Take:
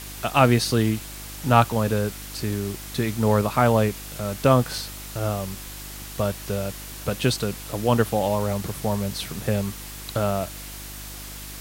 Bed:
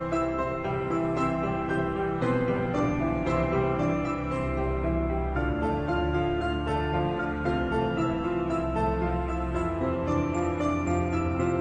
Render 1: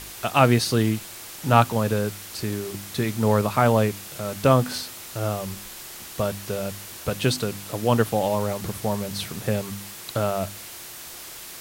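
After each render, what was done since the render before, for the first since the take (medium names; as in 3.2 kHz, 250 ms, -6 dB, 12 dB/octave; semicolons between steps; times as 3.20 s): de-hum 50 Hz, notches 6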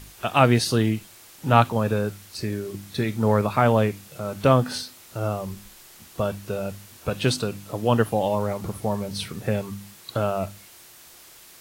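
noise print and reduce 9 dB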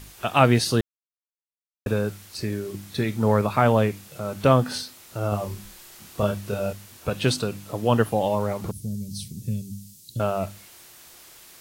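0.81–1.86 s: mute; 5.29–6.73 s: doubling 29 ms -3 dB; 8.71–10.20 s: Chebyshev band-stop 180–5900 Hz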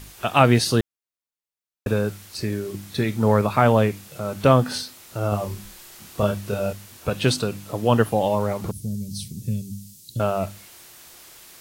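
trim +2 dB; peak limiter -3 dBFS, peak gain reduction 1.5 dB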